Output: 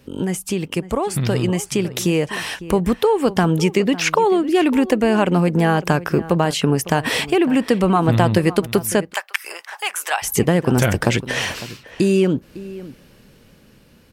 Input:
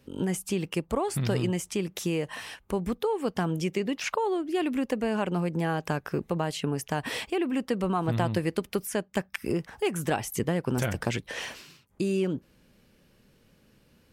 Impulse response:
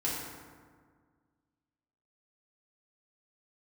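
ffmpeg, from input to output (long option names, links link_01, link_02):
-filter_complex "[0:a]asplit=2[link_01][link_02];[link_02]acompressor=threshold=-36dB:ratio=6,volume=-2.5dB[link_03];[link_01][link_03]amix=inputs=2:normalize=0,asplit=2[link_04][link_05];[link_05]adelay=553.9,volume=-16dB,highshelf=frequency=4000:gain=-12.5[link_06];[link_04][link_06]amix=inputs=2:normalize=0,dynaudnorm=framelen=280:gausssize=13:maxgain=5.5dB,asplit=3[link_07][link_08][link_09];[link_07]afade=type=out:start_time=9.12:duration=0.02[link_10];[link_08]highpass=frequency=800:width=0.5412,highpass=frequency=800:width=1.3066,afade=type=in:start_time=9.12:duration=0.02,afade=type=out:start_time=10.22:duration=0.02[link_11];[link_09]afade=type=in:start_time=10.22:duration=0.02[link_12];[link_10][link_11][link_12]amix=inputs=3:normalize=0,volume=4.5dB"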